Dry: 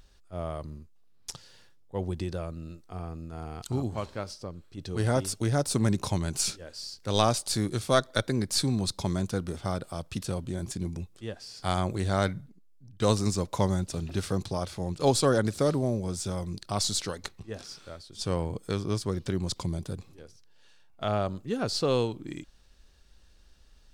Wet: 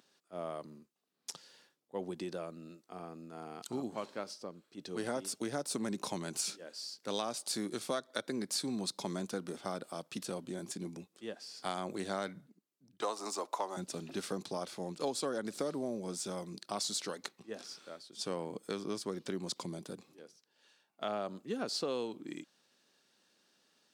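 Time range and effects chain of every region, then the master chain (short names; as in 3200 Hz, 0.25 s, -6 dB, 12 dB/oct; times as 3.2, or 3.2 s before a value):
13.01–13.77 half-wave gain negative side -3 dB + HPF 310 Hz 24 dB/oct + band shelf 920 Hz +8 dB 1.2 oct
whole clip: HPF 200 Hz 24 dB/oct; compressor 6:1, threshold -28 dBFS; gain -4 dB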